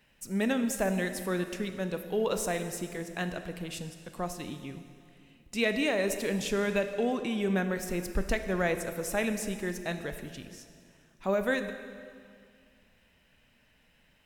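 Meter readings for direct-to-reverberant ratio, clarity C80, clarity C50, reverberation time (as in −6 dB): 8.0 dB, 10.0 dB, 9.0 dB, 2.2 s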